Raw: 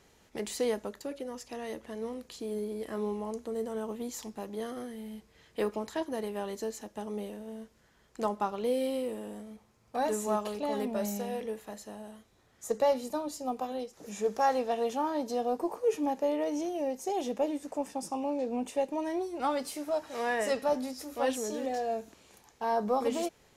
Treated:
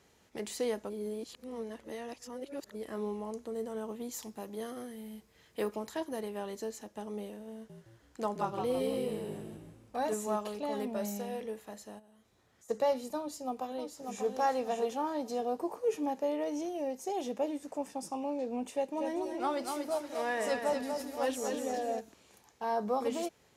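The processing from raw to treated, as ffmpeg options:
-filter_complex "[0:a]asettb=1/sr,asplit=3[a][b][c];[a]atrim=end=4.114[d];[b]atrim=start=4.11:end=6.21,asetpts=PTS-STARTPTS,afade=t=in:d=0.004:c=qsin,afade=t=out:st=2.096:d=0.004:c=qsin,highshelf=f=11k:g=9.5[e];[c]atrim=start=6.206[f];[d][e]acrossfade=d=0.004:c1=hsin:c2=qsin[g];[g][f]acrossfade=d=0.004:c1=qsin:c2=hsin,asettb=1/sr,asplit=3[h][i][j];[h]atrim=end=7.534[k];[i]atrim=start=7.53:end=10.14,asetpts=PTS-STARTPTS,afade=t=in:d=0.004:c=qsin,afade=t=out:st=2.606:d=0.004:c=qsin,asplit=7[l][m][n][o][p][q][r];[m]adelay=163,afreqshift=-52,volume=-5dB[s];[n]adelay=326,afreqshift=-104,volume=-11.7dB[t];[o]adelay=489,afreqshift=-156,volume=-18.5dB[u];[p]adelay=652,afreqshift=-208,volume=-25.2dB[v];[q]adelay=815,afreqshift=-260,volume=-32dB[w];[r]adelay=978,afreqshift=-312,volume=-38.7dB[x];[l][s][t][u][v][w][x]amix=inputs=7:normalize=0,atrim=end_sample=115101[y];[j]atrim=start=10.136[z];[k][y]acrossfade=d=0.004:c1=hsin:c2=qsin[aa];[aa][z]acrossfade=d=0.004:c1=qsin:c2=hsin,asplit=3[ab][ac][ad];[ab]afade=t=out:st=11.98:d=0.02[ae];[ac]acompressor=threshold=-59dB:ratio=3:attack=3.2:release=140:knee=1:detection=peak,afade=t=in:st=11.98:d=0.02,afade=t=out:st=12.68:d=0.02[af];[ad]afade=t=in:st=12.68:d=0.02[ag];[ae][af][ag]amix=inputs=3:normalize=0,asplit=2[ah][ai];[ai]afade=t=in:st=13.19:d=0.01,afade=t=out:st=14.26:d=0.01,aecho=0:1:590|1180|1770|2360:0.530884|0.18581|0.0650333|0.0227617[aj];[ah][aj]amix=inputs=2:normalize=0,asplit=3[ak][al][am];[ak]afade=t=out:st=18.96:d=0.02[an];[al]aecho=1:1:241|482|723|964:0.531|0.191|0.0688|0.0248,afade=t=in:st=18.96:d=0.02,afade=t=out:st=21.99:d=0.02[ao];[am]afade=t=in:st=21.99:d=0.02[ap];[an][ao][ap]amix=inputs=3:normalize=0,asplit=3[aq][ar][as];[aq]atrim=end=0.902[at];[ar]atrim=start=0.898:end=2.752,asetpts=PTS-STARTPTS,areverse[au];[as]atrim=start=2.748[av];[at][au]acrossfade=d=0.004:c1=hsin:c2=hsin[aw];[aw][av]acrossfade=d=0.004:c1=hsin:c2=hsin,highpass=55,volume=-3dB"

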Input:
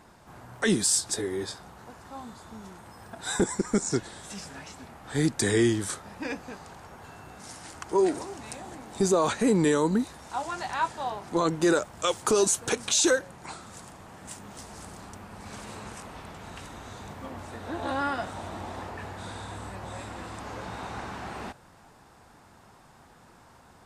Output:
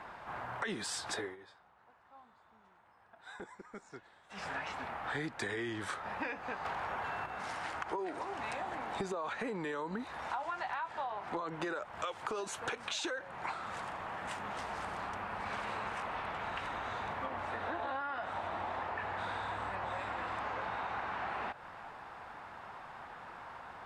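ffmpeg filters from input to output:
-filter_complex "[0:a]asettb=1/sr,asplit=3[a][b][c];[a]atrim=end=6.654[d];[b]atrim=start=6.65:end=7.26,asetpts=PTS-STARTPTS,afade=t=in:d=0.004:c=qsin,afade=t=out:st=0.606:d=0.004:c=qsin,aeval=exprs='0.0188*sin(PI/2*1.78*val(0)/0.0188)':c=same[e];[c]atrim=start=7.256[f];[d][e]acrossfade=d=0.004:c1=hsin:c2=qsin[g];[g][f]acrossfade=d=0.004:c1=qsin:c2=hsin,asplit=3[h][i][j];[h]atrim=end=1.36,asetpts=PTS-STARTPTS,afade=t=out:st=1.16:d=0.2:silence=0.0668344[k];[i]atrim=start=1.36:end=4.29,asetpts=PTS-STARTPTS,volume=-23.5dB[l];[j]atrim=start=4.29,asetpts=PTS-STARTPTS,afade=t=in:d=0.2:silence=0.0668344[m];[k][l][m]concat=n=3:v=0:a=1,acrossover=split=590 3100:gain=0.2 1 0.0708[n][o][p];[n][o][p]amix=inputs=3:normalize=0,alimiter=level_in=3dB:limit=-24dB:level=0:latency=1:release=63,volume=-3dB,acompressor=threshold=-45dB:ratio=10,volume=10dB"

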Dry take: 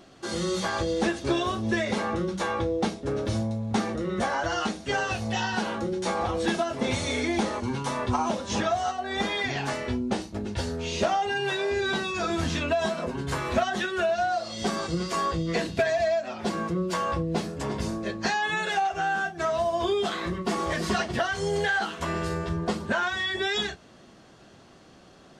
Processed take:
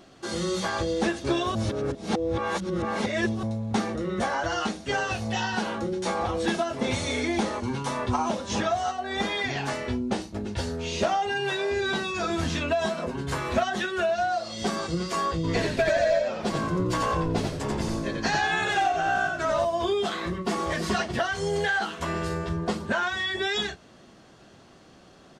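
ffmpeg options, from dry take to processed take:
-filter_complex "[0:a]asplit=3[a][b][c];[a]afade=t=out:st=15.43:d=0.02[d];[b]asplit=5[e][f][g][h][i];[f]adelay=88,afreqshift=-62,volume=-3dB[j];[g]adelay=176,afreqshift=-124,volume=-13.2dB[k];[h]adelay=264,afreqshift=-186,volume=-23.3dB[l];[i]adelay=352,afreqshift=-248,volume=-33.5dB[m];[e][j][k][l][m]amix=inputs=5:normalize=0,afade=t=in:st=15.43:d=0.02,afade=t=out:st=19.64:d=0.02[n];[c]afade=t=in:st=19.64:d=0.02[o];[d][n][o]amix=inputs=3:normalize=0,asplit=3[p][q][r];[p]atrim=end=1.552[s];[q]atrim=start=1.548:end=3.432,asetpts=PTS-STARTPTS,areverse[t];[r]atrim=start=3.428[u];[s][t]acrossfade=d=0.004:c1=hsin:c2=hsin[v];[v][u]acrossfade=d=0.004:c1=hsin:c2=hsin"

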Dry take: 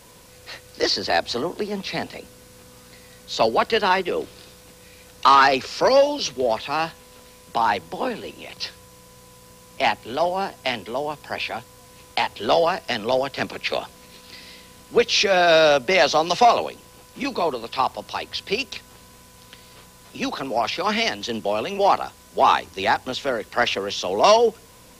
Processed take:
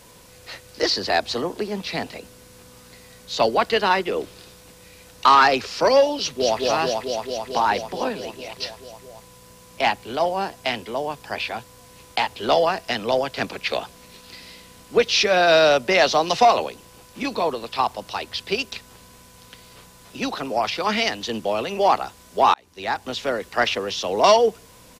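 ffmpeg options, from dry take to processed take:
-filter_complex "[0:a]asplit=2[a][b];[b]afade=t=in:st=6.18:d=0.01,afade=t=out:st=6.6:d=0.01,aecho=0:1:220|440|660|880|1100|1320|1540|1760|1980|2200|2420|2640:0.794328|0.635463|0.50837|0.406696|0.325357|0.260285|0.208228|0.166583|0.133266|0.106613|0.0852903|0.0682323[c];[a][c]amix=inputs=2:normalize=0,asplit=2[d][e];[d]atrim=end=22.54,asetpts=PTS-STARTPTS,afade=t=out:st=22.536:d=0.004:c=hsin[f];[e]atrim=start=22.54,asetpts=PTS-STARTPTS,afade=t=in:d=0.66[g];[f][g]concat=n=2:v=0:a=1"

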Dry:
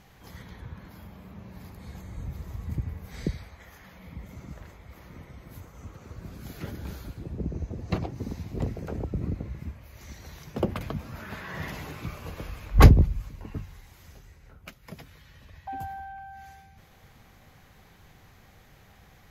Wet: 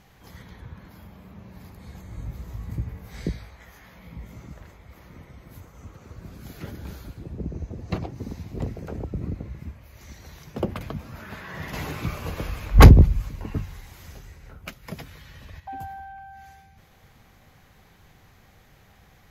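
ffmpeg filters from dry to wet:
-filter_complex "[0:a]asettb=1/sr,asplit=3[a][b][c];[a]atrim=end=2.094[d];[b]atrim=start=2.09:end=4.48,asetpts=PTS-STARTPTS,afade=t=in:d=0.004:c=qsin,afade=t=out:st=2.386:d=0.004:c=qsin,asplit=2[e][f];[f]adelay=18,volume=-5dB[g];[e][g]amix=inputs=2:normalize=0,atrim=end_sample=105399[h];[c]atrim=start=4.476[i];[d][h]acrossfade=d=0.004:c1=hsin:c2=qsin[j];[j][i]acrossfade=d=0.004:c1=qsin:c2=hsin,asettb=1/sr,asplit=3[k][l][m];[k]atrim=end=11.734[n];[l]atrim=start=11.73:end=15.6,asetpts=PTS-STARTPTS,afade=t=in:d=0.004:c=qsin,afade=t=out:st=3.866:d=0.004:c=qsin,aeval=exprs='0.841*sin(PI/2*1.41*val(0)/0.841)':c=same[o];[m]atrim=start=15.596[p];[n][o]acrossfade=d=0.004:c1=hsin:c2=qsin[q];[q][p]acrossfade=d=0.004:c1=qsin:c2=hsin"

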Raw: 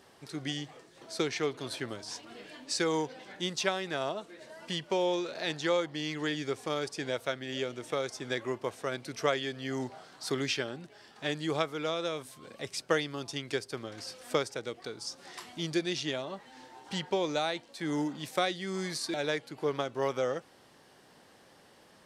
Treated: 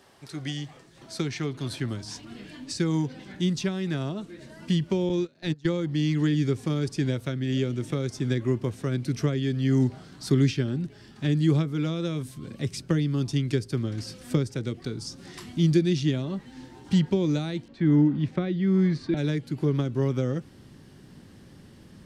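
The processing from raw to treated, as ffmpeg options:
-filter_complex "[0:a]asettb=1/sr,asplit=3[a][b][c];[a]atrim=end=5.094[d];[b]atrim=start=5.09:end=5.73,asetpts=PTS-STARTPTS,afade=t=in:d=0.004:c=qsin,afade=t=out:st=0.636:d=0.004:c=qsin,agate=range=-24dB:threshold=-35dB:ratio=16:release=100:detection=peak[e];[c]atrim=start=5.726[f];[d][e]acrossfade=d=0.004:c1=hsin:c2=qsin[g];[g][f]acrossfade=d=0.004:c1=qsin:c2=hsin,asettb=1/sr,asplit=3[h][i][j];[h]atrim=end=17.684[k];[i]atrim=start=17.68:end=19.17,asetpts=PTS-STARTPTS,afade=t=in:d=0.004:c=qsin,afade=t=out:st=1.486:d=0.004:c=qsin,lowpass=2.4k[l];[j]atrim=start=19.166[m];[k][l]acrossfade=d=0.004:c1=hsin:c2=qsin[n];[n][m]acrossfade=d=0.004:c1=qsin:c2=hsin,acrossover=split=390[o][p];[p]acompressor=threshold=-34dB:ratio=6[q];[o][q]amix=inputs=2:normalize=0,bandreject=f=470:w=15,asubboost=boost=11:cutoff=210,volume=2dB"

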